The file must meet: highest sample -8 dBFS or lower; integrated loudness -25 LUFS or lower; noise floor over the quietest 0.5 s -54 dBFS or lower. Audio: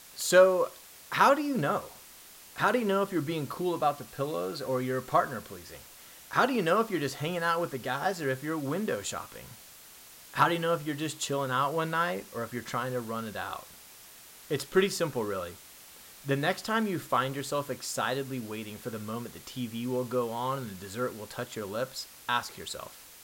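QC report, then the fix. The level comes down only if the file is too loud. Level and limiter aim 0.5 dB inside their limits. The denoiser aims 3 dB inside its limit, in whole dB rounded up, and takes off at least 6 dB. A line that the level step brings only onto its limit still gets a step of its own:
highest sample -10.0 dBFS: pass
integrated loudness -30.0 LUFS: pass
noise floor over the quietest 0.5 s -51 dBFS: fail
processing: noise reduction 6 dB, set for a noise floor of -51 dBFS

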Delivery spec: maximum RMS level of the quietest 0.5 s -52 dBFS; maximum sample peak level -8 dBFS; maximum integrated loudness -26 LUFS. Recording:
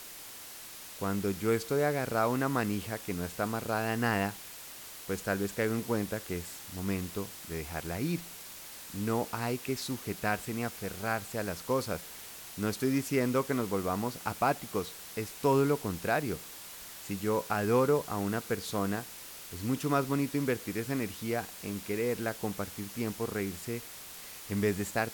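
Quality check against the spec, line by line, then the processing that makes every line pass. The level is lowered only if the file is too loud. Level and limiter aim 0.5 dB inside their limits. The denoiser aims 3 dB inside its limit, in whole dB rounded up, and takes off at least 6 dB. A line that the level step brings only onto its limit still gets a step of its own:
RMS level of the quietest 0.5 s -46 dBFS: fail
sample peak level -15.5 dBFS: pass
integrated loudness -32.5 LUFS: pass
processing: noise reduction 9 dB, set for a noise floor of -46 dBFS

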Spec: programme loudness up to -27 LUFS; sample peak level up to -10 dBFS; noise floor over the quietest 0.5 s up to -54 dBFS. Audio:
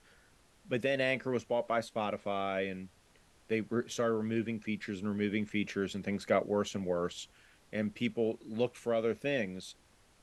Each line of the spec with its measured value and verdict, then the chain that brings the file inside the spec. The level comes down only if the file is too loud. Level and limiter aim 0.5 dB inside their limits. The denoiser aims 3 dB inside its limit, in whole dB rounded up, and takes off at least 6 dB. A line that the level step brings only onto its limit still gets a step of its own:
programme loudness -34.0 LUFS: pass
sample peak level -16.5 dBFS: pass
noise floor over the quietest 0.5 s -64 dBFS: pass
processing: none needed

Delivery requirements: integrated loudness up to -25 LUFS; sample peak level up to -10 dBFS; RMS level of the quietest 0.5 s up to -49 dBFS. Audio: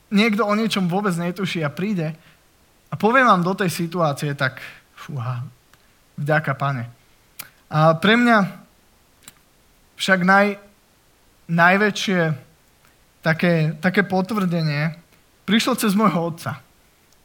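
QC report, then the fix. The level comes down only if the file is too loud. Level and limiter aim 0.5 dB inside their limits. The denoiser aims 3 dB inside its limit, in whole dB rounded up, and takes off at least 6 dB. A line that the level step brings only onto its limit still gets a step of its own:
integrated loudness -19.5 LUFS: fail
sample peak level -1.5 dBFS: fail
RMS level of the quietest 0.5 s -57 dBFS: pass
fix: trim -6 dB; peak limiter -10.5 dBFS

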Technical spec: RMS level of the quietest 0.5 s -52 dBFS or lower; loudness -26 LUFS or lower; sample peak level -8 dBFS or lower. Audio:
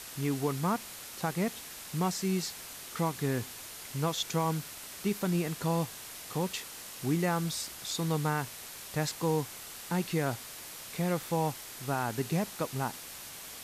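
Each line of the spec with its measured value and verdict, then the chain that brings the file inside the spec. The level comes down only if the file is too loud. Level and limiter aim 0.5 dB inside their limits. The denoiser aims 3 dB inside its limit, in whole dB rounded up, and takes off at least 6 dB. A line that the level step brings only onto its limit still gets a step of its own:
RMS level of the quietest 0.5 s -45 dBFS: fail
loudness -33.5 LUFS: pass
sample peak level -19.0 dBFS: pass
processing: noise reduction 10 dB, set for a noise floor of -45 dBFS

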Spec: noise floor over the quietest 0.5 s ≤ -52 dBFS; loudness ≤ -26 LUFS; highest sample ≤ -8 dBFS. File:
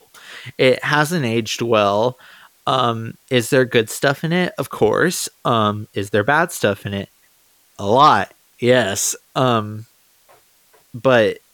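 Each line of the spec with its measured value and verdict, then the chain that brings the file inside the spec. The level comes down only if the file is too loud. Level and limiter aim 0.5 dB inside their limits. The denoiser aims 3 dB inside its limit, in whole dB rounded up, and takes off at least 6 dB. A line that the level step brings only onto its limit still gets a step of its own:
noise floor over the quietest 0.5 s -56 dBFS: pass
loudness -18.0 LUFS: fail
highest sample -2.5 dBFS: fail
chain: trim -8.5 dB

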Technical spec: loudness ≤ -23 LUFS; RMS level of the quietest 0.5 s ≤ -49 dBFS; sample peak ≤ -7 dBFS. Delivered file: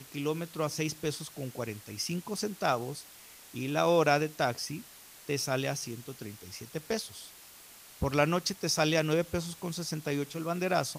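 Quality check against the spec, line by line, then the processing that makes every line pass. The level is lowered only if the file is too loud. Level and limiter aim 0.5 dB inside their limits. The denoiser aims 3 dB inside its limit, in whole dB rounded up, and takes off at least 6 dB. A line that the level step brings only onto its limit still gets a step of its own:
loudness -31.5 LUFS: pass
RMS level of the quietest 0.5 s -53 dBFS: pass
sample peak -11.5 dBFS: pass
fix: none needed

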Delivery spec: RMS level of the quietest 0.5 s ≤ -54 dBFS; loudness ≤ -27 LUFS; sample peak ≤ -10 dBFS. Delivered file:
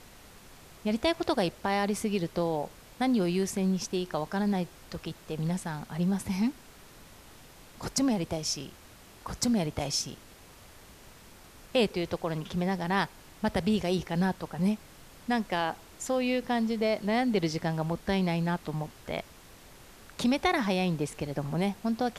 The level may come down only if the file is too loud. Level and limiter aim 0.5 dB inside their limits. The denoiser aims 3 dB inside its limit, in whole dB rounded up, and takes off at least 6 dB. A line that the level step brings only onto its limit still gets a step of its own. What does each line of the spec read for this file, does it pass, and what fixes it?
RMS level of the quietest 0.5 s -52 dBFS: fail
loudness -30.0 LUFS: pass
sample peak -12.0 dBFS: pass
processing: noise reduction 6 dB, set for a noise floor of -52 dBFS

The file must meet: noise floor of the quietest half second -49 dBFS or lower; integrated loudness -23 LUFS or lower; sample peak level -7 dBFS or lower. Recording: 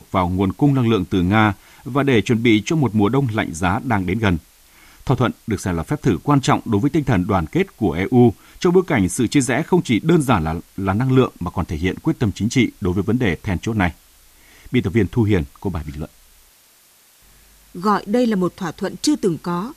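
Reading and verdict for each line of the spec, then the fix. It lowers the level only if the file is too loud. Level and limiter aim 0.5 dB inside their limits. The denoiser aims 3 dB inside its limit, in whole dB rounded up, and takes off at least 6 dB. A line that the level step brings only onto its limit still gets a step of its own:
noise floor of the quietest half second -53 dBFS: pass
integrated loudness -19.0 LUFS: fail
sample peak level -3.0 dBFS: fail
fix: trim -4.5 dB

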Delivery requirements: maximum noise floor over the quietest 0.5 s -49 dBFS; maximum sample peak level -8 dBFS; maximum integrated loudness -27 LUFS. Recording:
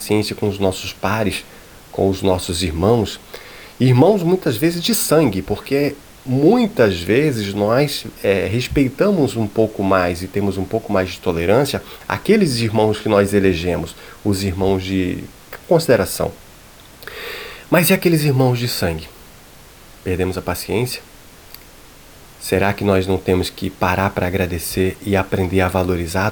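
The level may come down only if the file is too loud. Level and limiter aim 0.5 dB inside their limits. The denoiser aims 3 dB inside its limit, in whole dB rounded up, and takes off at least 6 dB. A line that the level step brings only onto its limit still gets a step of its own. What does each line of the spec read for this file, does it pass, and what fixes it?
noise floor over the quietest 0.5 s -42 dBFS: fail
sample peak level -1.5 dBFS: fail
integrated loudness -18.0 LUFS: fail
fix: trim -9.5 dB

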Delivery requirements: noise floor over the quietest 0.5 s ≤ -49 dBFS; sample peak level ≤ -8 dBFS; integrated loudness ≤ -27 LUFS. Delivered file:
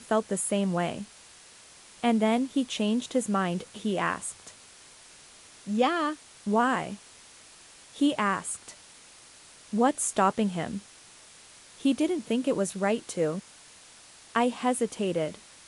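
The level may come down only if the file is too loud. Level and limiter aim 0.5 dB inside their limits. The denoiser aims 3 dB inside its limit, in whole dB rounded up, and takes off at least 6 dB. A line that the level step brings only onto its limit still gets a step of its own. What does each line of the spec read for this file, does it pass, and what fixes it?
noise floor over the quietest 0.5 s -52 dBFS: pass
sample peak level -11.0 dBFS: pass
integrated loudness -28.0 LUFS: pass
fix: none needed

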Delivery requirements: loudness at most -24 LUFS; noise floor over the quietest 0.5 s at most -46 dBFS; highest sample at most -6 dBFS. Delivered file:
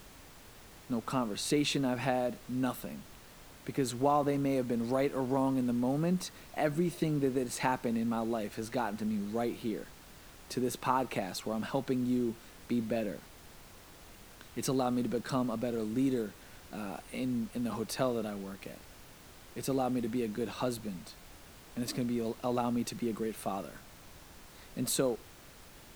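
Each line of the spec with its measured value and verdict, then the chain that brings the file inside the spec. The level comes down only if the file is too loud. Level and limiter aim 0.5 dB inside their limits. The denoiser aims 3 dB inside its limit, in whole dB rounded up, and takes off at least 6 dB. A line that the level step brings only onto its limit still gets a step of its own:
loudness -33.5 LUFS: pass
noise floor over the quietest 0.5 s -54 dBFS: pass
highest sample -13.5 dBFS: pass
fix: none needed

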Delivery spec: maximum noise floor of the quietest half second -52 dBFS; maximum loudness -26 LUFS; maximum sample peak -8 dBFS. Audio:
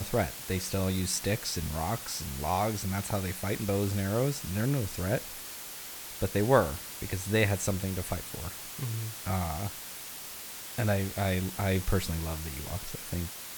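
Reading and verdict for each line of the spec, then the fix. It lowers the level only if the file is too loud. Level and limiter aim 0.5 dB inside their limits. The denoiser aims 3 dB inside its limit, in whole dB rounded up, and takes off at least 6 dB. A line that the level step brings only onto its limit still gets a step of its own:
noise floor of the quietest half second -42 dBFS: fail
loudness -31.5 LUFS: pass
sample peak -8.5 dBFS: pass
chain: noise reduction 13 dB, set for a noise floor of -42 dBFS

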